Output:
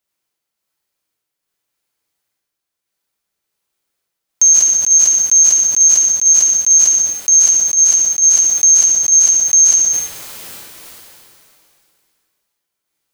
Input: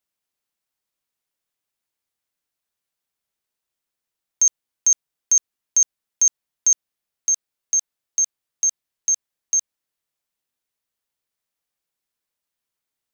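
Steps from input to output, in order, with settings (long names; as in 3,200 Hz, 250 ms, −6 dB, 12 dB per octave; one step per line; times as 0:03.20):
speech leveller 2 s
sample-and-hold tremolo
convolution reverb RT60 0.55 s, pre-delay 39 ms, DRR −2.5 dB
boost into a limiter +10.5 dB
level that may fall only so fast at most 23 dB per second
level −3 dB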